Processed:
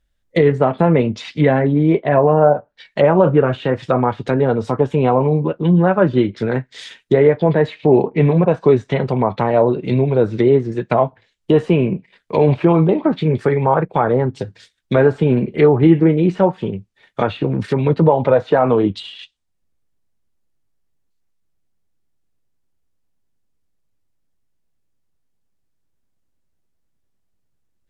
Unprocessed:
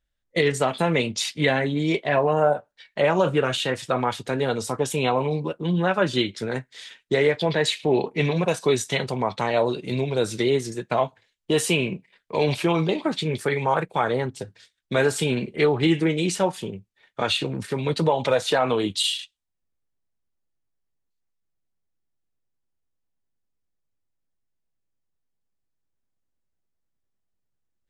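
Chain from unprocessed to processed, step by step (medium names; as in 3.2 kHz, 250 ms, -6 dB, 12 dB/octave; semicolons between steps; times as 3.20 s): low-pass that closes with the level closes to 1.3 kHz, closed at -21 dBFS; bass shelf 430 Hz +5 dB; trim +6 dB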